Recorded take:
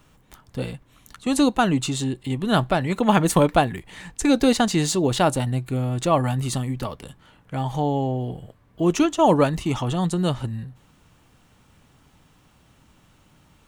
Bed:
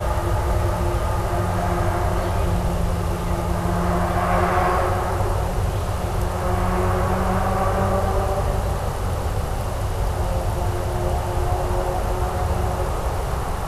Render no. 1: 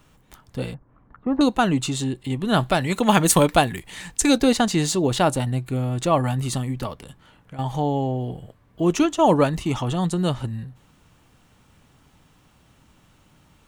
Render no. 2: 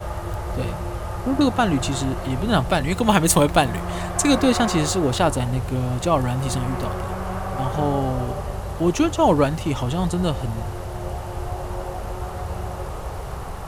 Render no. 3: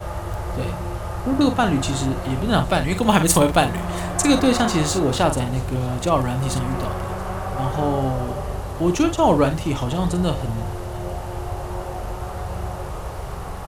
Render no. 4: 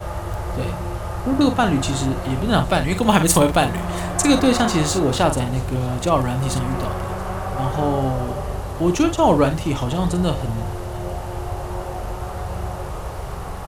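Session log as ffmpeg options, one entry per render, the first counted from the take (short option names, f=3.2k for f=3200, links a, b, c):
-filter_complex "[0:a]asettb=1/sr,asplit=3[a][b][c];[a]atrim=end=0.744[d];[b]atrim=start=0.74:end=1.41,asetpts=PTS-STARTPTS,afade=t=in:d=0.004:c=qsin,afade=t=out:st=0.666:d=0.004:c=qsin,lowpass=f=1.4k:w=0.5412,lowpass=f=1.4k:w=1.3066[e];[c]atrim=start=1.406[f];[d][e]acrossfade=d=0.004:c1=hsin:c2=qsin[g];[g][f]acrossfade=d=0.004:c1=qsin:c2=hsin,asettb=1/sr,asplit=3[h][i][j];[h]atrim=end=2.604[k];[i]atrim=start=2.6:end=4.38,asetpts=PTS-STARTPTS,afade=t=in:d=0.004:c=qsin,afade=t=out:st=1.776:d=0.004:c=qsin,highshelf=f=3k:g=9.5[l];[j]atrim=start=4.376[m];[k][l]acrossfade=d=0.004:c1=hsin:c2=qsin[n];[n][m]acrossfade=d=0.004:c1=qsin:c2=hsin,asettb=1/sr,asplit=3[o][p][q];[o]atrim=end=6.934[r];[p]atrim=start=6.93:end=7.59,asetpts=PTS-STARTPTS,afade=t=in:d=0.004:c=qsin,afade=t=out:st=0.656:d=0.004:c=qsin,acompressor=threshold=-35dB:ratio=6:attack=3.2:release=140:knee=1:detection=peak[s];[q]atrim=start=7.586[t];[r][s]acrossfade=d=0.004:c1=hsin:c2=qsin[u];[u][t]acrossfade=d=0.004:c1=qsin:c2=hsin"
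-filter_complex "[1:a]volume=-7dB[a];[0:a][a]amix=inputs=2:normalize=0"
-filter_complex "[0:a]asplit=2[a][b];[b]adelay=45,volume=-9dB[c];[a][c]amix=inputs=2:normalize=0,aecho=1:1:681:0.075"
-af "volume=1dB,alimiter=limit=-3dB:level=0:latency=1"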